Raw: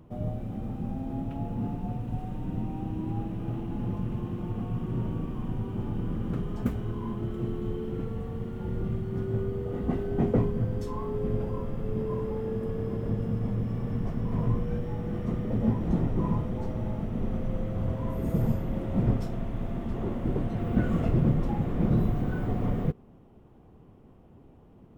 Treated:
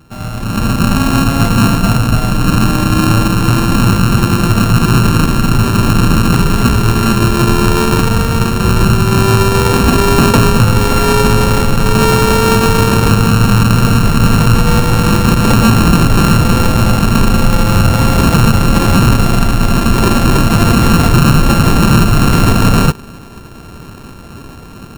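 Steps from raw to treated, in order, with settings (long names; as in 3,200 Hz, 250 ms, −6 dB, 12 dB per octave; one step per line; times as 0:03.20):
samples sorted by size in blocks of 32 samples
brickwall limiter −23 dBFS, peak gain reduction 10.5 dB
automatic gain control gain up to 14.5 dB
level +7.5 dB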